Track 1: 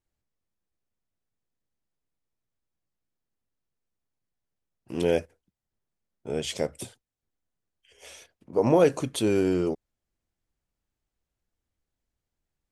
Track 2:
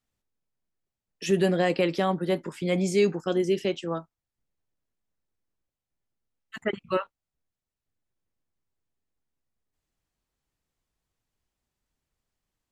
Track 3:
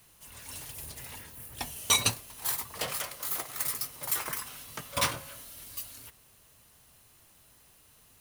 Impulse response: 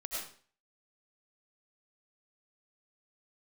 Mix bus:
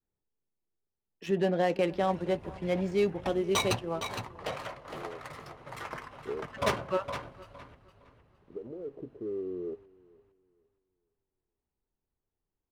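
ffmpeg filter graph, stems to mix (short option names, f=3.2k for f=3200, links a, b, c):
-filter_complex "[0:a]alimiter=limit=-19dB:level=0:latency=1:release=300,acompressor=threshold=-33dB:ratio=5,lowpass=f=410:t=q:w=5,volume=-10.5dB,asplit=2[a][b];[b]volume=-23.5dB[c];[1:a]equalizer=f=860:t=o:w=0.26:g=5,volume=-6dB,asplit=3[d][e][f];[e]volume=-19.5dB[g];[2:a]highshelf=f=2.8k:g=-9,adelay=1650,volume=0.5dB,asplit=2[h][i];[i]volume=-7dB[j];[f]apad=whole_len=560906[k];[a][k]sidechaincompress=threshold=-54dB:ratio=8:attack=8.4:release=996[l];[c][g][j]amix=inputs=3:normalize=0,aecho=0:1:462|924|1386|1848:1|0.28|0.0784|0.022[m];[l][d][h][m]amix=inputs=4:normalize=0,adynamicequalizer=threshold=0.00708:dfrequency=640:dqfactor=1.9:tfrequency=640:tqfactor=1.9:attack=5:release=100:ratio=0.375:range=2.5:mode=boostabove:tftype=bell,adynamicsmooth=sensitivity=7.5:basefreq=1.8k"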